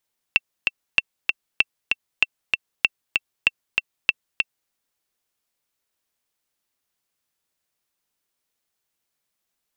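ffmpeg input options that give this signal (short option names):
-f lavfi -i "aevalsrc='pow(10,(-2-3.5*gte(mod(t,2*60/193),60/193))/20)*sin(2*PI*2690*mod(t,60/193))*exp(-6.91*mod(t,60/193)/0.03)':d=4.35:s=44100"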